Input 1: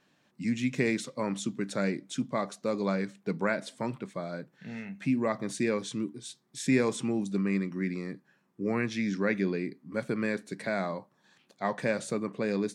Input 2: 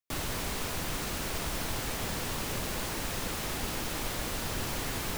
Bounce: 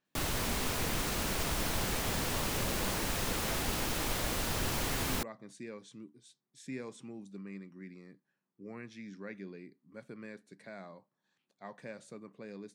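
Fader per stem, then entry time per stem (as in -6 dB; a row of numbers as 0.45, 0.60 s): -16.5, +0.5 dB; 0.00, 0.05 s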